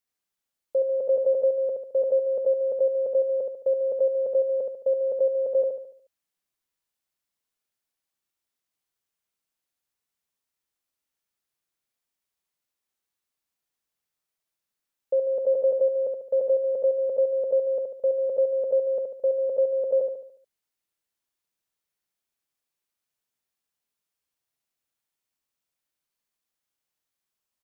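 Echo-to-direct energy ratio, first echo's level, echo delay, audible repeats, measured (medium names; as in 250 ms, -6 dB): -3.5 dB, -4.5 dB, 72 ms, 5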